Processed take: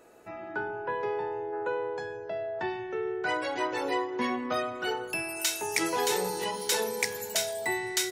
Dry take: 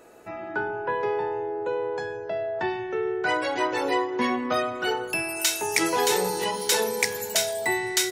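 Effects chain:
0:01.52–0:01.93: parametric band 1,400 Hz +13 dB → +2.5 dB 1.3 octaves
level −5 dB

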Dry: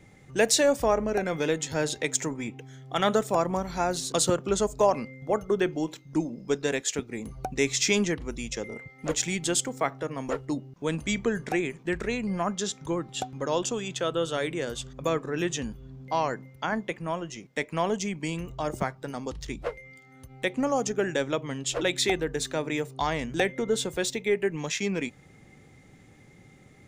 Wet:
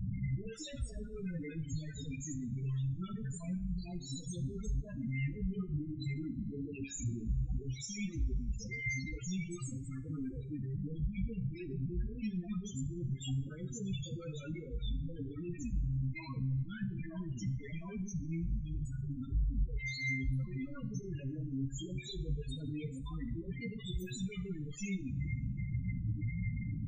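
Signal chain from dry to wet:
sign of each sample alone
guitar amp tone stack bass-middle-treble 6-0-2
all-pass dispersion highs, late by 81 ms, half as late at 620 Hz
chorus effect 0.12 Hz, delay 15.5 ms, depth 7.5 ms
spectral peaks only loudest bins 8
coupled-rooms reverb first 0.47 s, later 2.3 s, from −22 dB, DRR 10.5 dB
level +13.5 dB

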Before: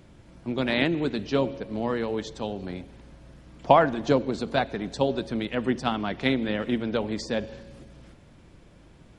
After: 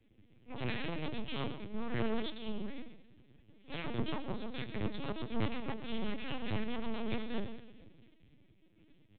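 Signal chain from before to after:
Chebyshev band-stop filter 320–2,300 Hz, order 2
mains-hum notches 60/120/180/240/300/360/420/480/540/600 Hz
0:00.67–0:02.80: dynamic equaliser 320 Hz, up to −4 dB, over −40 dBFS, Q 1.8
downward compressor 4 to 1, threshold −31 dBFS, peak gain reduction 9 dB
transient designer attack −12 dB, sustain −8 dB
wave folding −34.5 dBFS
flanger 1.5 Hz, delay 8.6 ms, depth 2 ms, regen +41%
half-wave rectification
single-tap delay 133 ms −10.5 dB
convolution reverb RT60 1.4 s, pre-delay 81 ms, DRR 13.5 dB
linear-prediction vocoder at 8 kHz pitch kept
multiband upward and downward expander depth 70%
level +10.5 dB

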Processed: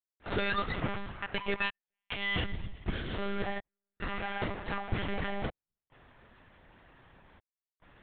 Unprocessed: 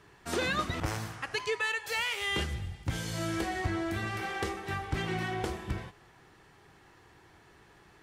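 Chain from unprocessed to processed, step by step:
gate pattern ".xxxxxxx." 71 BPM −60 dB
one-pitch LPC vocoder at 8 kHz 200 Hz

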